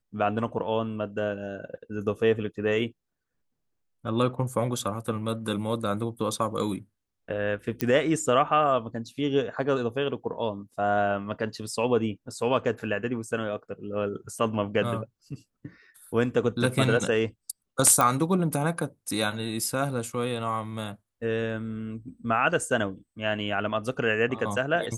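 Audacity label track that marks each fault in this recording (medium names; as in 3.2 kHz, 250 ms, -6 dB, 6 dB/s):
7.810000	7.810000	pop -11 dBFS
18.010000	18.010000	pop -8 dBFS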